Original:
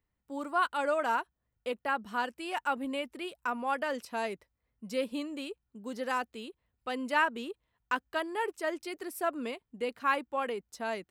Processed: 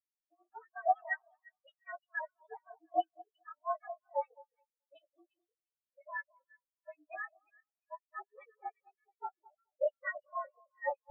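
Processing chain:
partials spread apart or drawn together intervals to 111%
high-pass filter 510 Hz 24 dB per octave
noise gate −59 dBFS, range −18 dB
low-pass filter 2,600 Hz 12 dB per octave
dynamic equaliser 1,100 Hz, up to −3 dB, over −44 dBFS, Q 0.92
brickwall limiter −30 dBFS, peak gain reduction 8.5 dB
two-band tremolo in antiphase 6.7 Hz, depth 100%, crossover 1,100 Hz
phase-vocoder pitch shift with formants kept +2.5 semitones
echo with a time of its own for lows and highs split 1,300 Hz, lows 214 ms, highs 351 ms, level −5.5 dB
every bin expanded away from the loudest bin 4 to 1
level +13 dB

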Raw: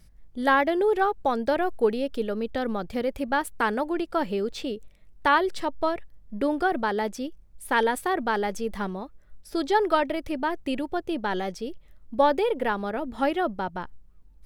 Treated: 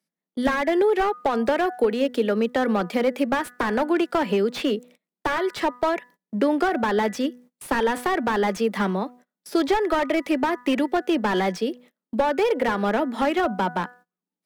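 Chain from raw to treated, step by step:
Butterworth high-pass 170 Hz 96 dB per octave
downward compressor 8 to 1, threshold −25 dBFS, peak gain reduction 11 dB
hum removal 246.2 Hz, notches 8
dynamic equaliser 2,100 Hz, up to +6 dB, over −48 dBFS, Q 1.3
noise gate −54 dBFS, range −26 dB
slew-rate limiting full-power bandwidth 42 Hz
level +8.5 dB

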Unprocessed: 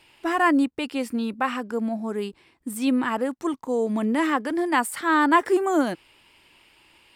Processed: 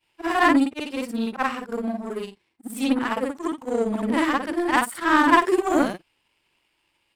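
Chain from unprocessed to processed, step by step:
every overlapping window played backwards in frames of 132 ms
power curve on the samples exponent 1.4
level +8 dB

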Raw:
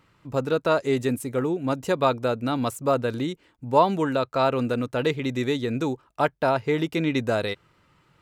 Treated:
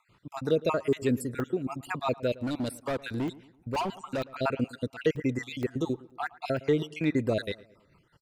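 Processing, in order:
time-frequency cells dropped at random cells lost 47%
in parallel at −7 dB: soft clipping −20 dBFS, distortion −13 dB
on the sum: rotating-speaker cabinet horn 5.5 Hz
0:02.40–0:04.32: hard clipping −24.5 dBFS, distortion −12 dB
on a send: feedback echo with a low-pass in the loop 111 ms, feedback 45%, low-pass 2,100 Hz, level −19.5 dB
on the sum: downsampling to 32,000 Hz
regular buffer underruns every 0.47 s, samples 64, zero, from 0:00.93
level −2.5 dB

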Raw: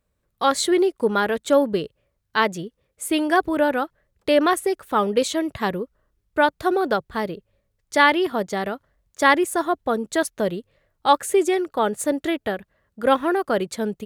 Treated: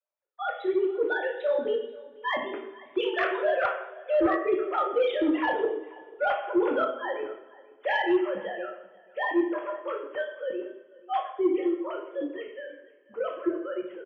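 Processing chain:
three sine waves on the formant tracks
source passing by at 0:04.89, 16 m/s, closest 11 metres
low-shelf EQ 250 Hz +4.5 dB
reversed playback
downward compressor 8 to 1, threshold −32 dBFS, peak gain reduction 23.5 dB
reversed playback
single-tap delay 487 ms −22 dB
coupled-rooms reverb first 0.68 s, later 2.6 s, from −24 dB, DRR −1.5 dB
sine wavefolder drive 4 dB, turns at −16 dBFS

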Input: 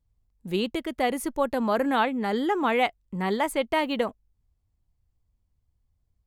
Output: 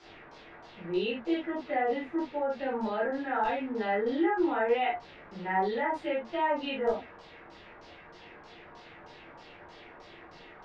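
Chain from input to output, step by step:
phase-vocoder stretch with locked phases 1.7×
notch comb filter 1,100 Hz
background noise pink −47 dBFS
high-pass filter 190 Hz 6 dB per octave
brickwall limiter −22.5 dBFS, peak gain reduction 10.5 dB
three-way crossover with the lows and the highs turned down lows −13 dB, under 270 Hz, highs −16 dB, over 5,700 Hz
auto-filter low-pass saw down 3.2 Hz 990–5,700 Hz
spectral tilt −2 dB per octave
convolution reverb, pre-delay 12 ms, DRR −6 dB
level −8 dB

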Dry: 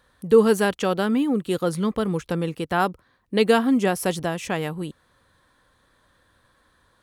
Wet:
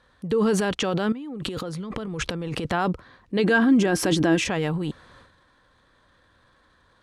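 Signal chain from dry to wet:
low-pass filter 6,000 Hz 12 dB per octave
transient designer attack −1 dB, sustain +11 dB
brickwall limiter −15.5 dBFS, peak gain reduction 10.5 dB
0:01.12–0:02.72: compressor whose output falls as the input rises −32 dBFS, ratio −1
0:03.39–0:04.46: hollow resonant body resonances 320/1,600 Hz, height 15 dB, ringing for 95 ms
level +1 dB

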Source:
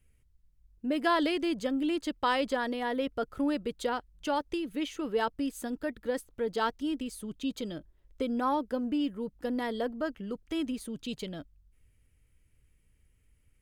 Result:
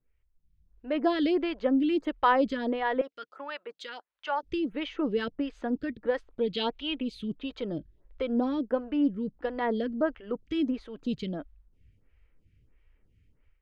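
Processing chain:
0:03.01–0:04.43: high-pass filter 950 Hz 12 dB per octave
0:06.32–0:07.28: flat-topped bell 3,100 Hz +12.5 dB 1.1 octaves
automatic gain control gain up to 11.5 dB
high-frequency loss of the air 220 metres
phaser with staggered stages 1.5 Hz
level −4 dB

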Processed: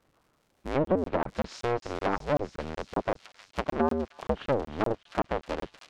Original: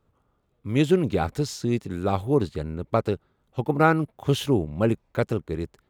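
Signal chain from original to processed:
sub-harmonics by changed cycles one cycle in 2, inverted
surface crackle 250 per second −55 dBFS
high-shelf EQ 4,000 Hz −7 dB
treble cut that deepens with the level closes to 640 Hz, closed at −16.5 dBFS
low-shelf EQ 130 Hz −10 dB
delay with a high-pass on its return 313 ms, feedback 72%, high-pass 4,300 Hz, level −4.5 dB
in parallel at −1 dB: downward compressor, threshold −34 dBFS, peak gain reduction 16 dB
on the sum: regular buffer underruns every 0.19 s, samples 1,024, zero, from 0:00.85
level −4 dB

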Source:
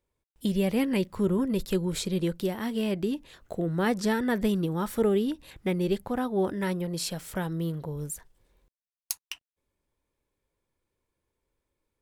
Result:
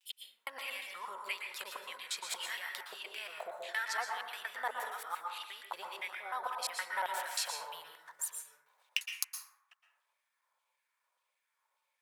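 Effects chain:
slices reordered back to front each 117 ms, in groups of 4
downward compressor, threshold −31 dBFS, peak gain reduction 11 dB
auto-filter high-pass saw down 1.7 Hz 780–3,100 Hz
low shelf with overshoot 440 Hz −12 dB, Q 1.5
dense smooth reverb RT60 0.93 s, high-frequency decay 0.35×, pre-delay 105 ms, DRR 1.5 dB

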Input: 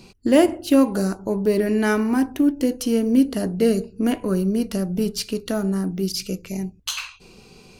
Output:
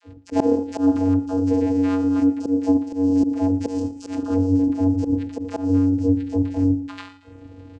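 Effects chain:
high-shelf EQ 3,000 Hz −8.5 dB
mains-hum notches 60/120/180/240/300/360/420/480/540 Hz
bad sample-rate conversion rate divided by 8×, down filtered, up hold
all-pass dispersion lows, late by 69 ms, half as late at 480 Hz
in parallel at −1.5 dB: brickwall limiter −15 dBFS, peak gain reduction 11.5 dB
on the sum: channel vocoder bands 8, square 93.6 Hz
notch filter 400 Hz, Q 12
volume swells 131 ms
repeating echo 114 ms, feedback 54%, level −19 dB
speech leveller within 4 dB 0.5 s
0:03.68–0:04.23: tilt shelving filter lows −8.5 dB, about 1,200 Hz

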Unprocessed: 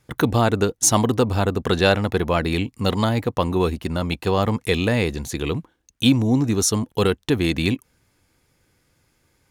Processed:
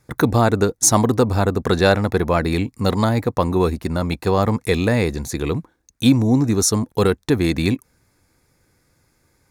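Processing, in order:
parametric band 3,000 Hz −12.5 dB 0.35 octaves
level +2.5 dB

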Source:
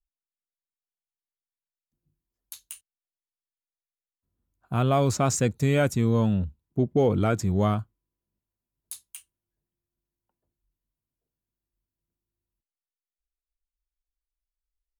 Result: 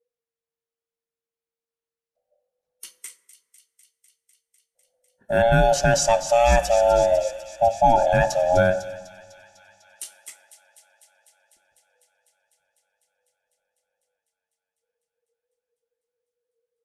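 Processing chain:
neighbouring bands swapped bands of 500 Hz
notch filter 1,200 Hz, Q 24
hum removal 122.1 Hz, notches 17
speed change −11%
linear-phase brick-wall low-pass 13,000 Hz
delay with a high-pass on its return 250 ms, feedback 81%, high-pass 3,000 Hz, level −10 dB
convolution reverb RT60 1.8 s, pre-delay 33 ms, DRR 15.5 dB
one half of a high-frequency compander decoder only
level +5 dB

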